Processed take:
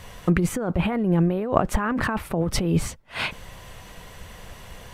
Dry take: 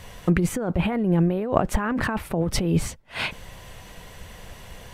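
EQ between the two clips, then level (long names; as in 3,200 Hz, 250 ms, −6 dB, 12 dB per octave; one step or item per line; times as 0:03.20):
parametric band 1,200 Hz +3 dB 0.49 octaves
0.0 dB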